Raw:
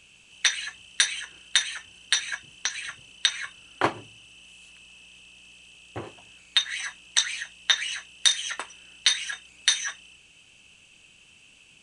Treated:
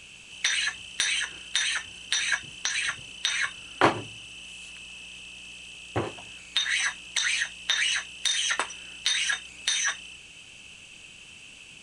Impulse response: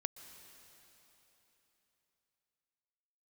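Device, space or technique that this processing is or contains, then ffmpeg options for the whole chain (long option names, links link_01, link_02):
de-esser from a sidechain: -filter_complex "[0:a]asplit=2[link_01][link_02];[link_02]highpass=frequency=6200:poles=1,apad=whole_len=521515[link_03];[link_01][link_03]sidechaincompress=threshold=-35dB:ratio=4:attack=2.2:release=33,volume=7.5dB"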